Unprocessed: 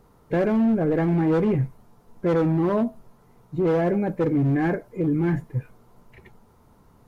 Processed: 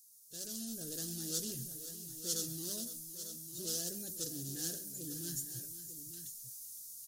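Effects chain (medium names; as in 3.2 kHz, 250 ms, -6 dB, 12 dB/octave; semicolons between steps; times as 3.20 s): inverse Chebyshev high-pass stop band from 2.4 kHz, stop band 50 dB; level rider gain up to 13 dB; multi-tap echo 132/512/899 ms -16.5/-13.5/-11 dB; trim +13 dB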